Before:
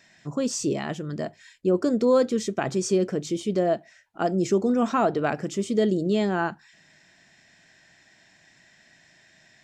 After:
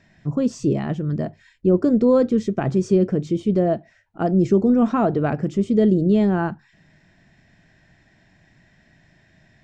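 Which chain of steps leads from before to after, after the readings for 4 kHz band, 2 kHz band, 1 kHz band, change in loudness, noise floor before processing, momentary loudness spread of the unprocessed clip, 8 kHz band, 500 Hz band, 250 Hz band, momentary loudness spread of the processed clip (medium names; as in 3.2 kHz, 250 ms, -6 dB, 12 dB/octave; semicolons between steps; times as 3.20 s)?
no reading, -2.0 dB, +0.5 dB, +5.0 dB, -59 dBFS, 9 LU, under -10 dB, +3.0 dB, +7.0 dB, 9 LU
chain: RIAA curve playback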